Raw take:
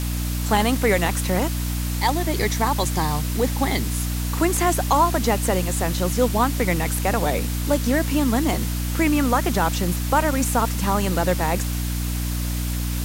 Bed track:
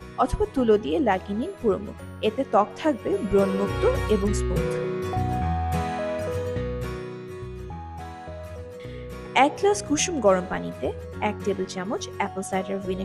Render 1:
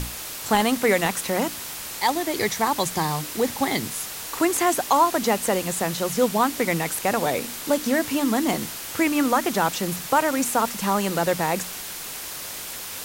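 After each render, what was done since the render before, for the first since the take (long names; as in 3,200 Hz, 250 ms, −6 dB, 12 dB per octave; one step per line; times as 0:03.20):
mains-hum notches 60/120/180/240/300 Hz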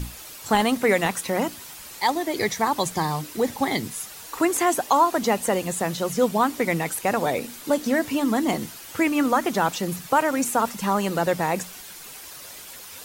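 broadband denoise 9 dB, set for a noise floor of −35 dBFS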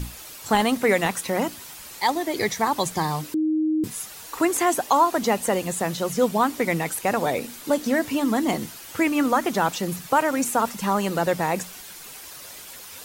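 0:03.34–0:03.84: beep over 312 Hz −19 dBFS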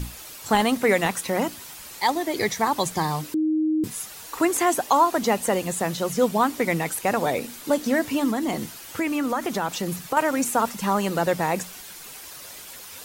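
0:08.30–0:10.17: downward compressor 2.5 to 1, threshold −22 dBFS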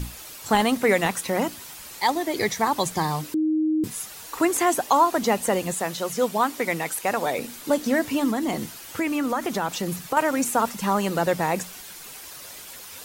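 0:05.74–0:07.39: low-shelf EQ 260 Hz −9.5 dB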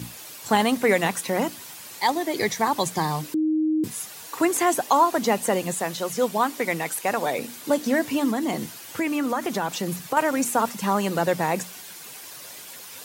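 high-pass filter 99 Hz 24 dB per octave
notch filter 1,300 Hz, Q 23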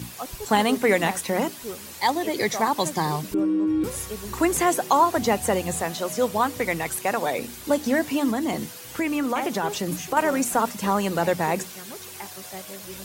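mix in bed track −13 dB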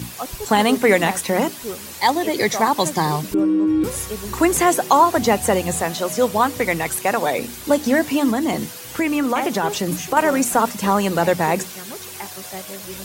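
level +5 dB
brickwall limiter −3 dBFS, peak gain reduction 2 dB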